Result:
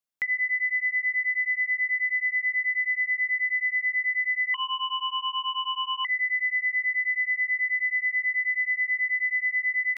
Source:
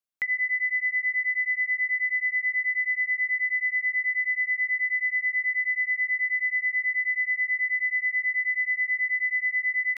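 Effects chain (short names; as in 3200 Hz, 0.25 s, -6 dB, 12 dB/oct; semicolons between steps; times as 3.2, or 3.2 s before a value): 4.54–6.05 ring modulator 960 Hz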